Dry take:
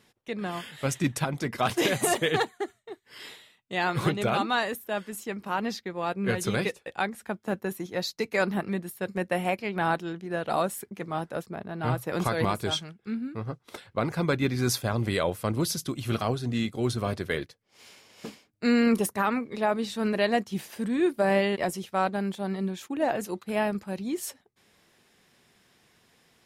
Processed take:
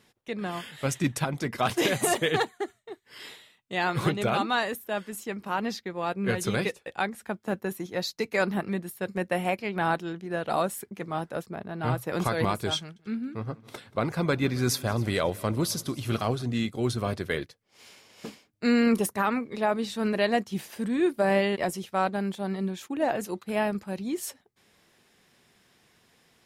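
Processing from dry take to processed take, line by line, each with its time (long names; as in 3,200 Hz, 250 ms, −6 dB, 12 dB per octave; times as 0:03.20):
0:12.78–0:16.43: echo machine with several playback heads 91 ms, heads second and third, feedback 48%, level −23 dB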